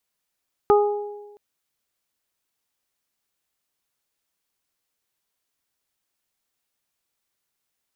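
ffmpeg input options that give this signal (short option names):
-f lavfi -i "aevalsrc='0.251*pow(10,-3*t/1.17)*sin(2*PI*413*t)+0.15*pow(10,-3*t/0.99)*sin(2*PI*826*t)+0.1*pow(10,-3*t/0.44)*sin(2*PI*1239*t)':d=0.67:s=44100"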